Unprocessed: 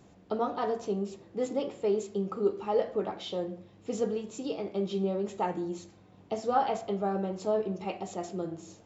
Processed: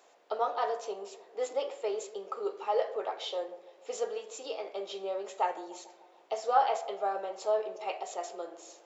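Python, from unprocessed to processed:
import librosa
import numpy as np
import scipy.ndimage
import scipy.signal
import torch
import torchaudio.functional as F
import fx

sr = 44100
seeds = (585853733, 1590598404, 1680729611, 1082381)

y = scipy.signal.sosfilt(scipy.signal.butter(4, 510.0, 'highpass', fs=sr, output='sos'), x)
y = fx.echo_bbd(y, sr, ms=148, stages=1024, feedback_pct=63, wet_db=-18)
y = F.gain(torch.from_numpy(y), 2.0).numpy()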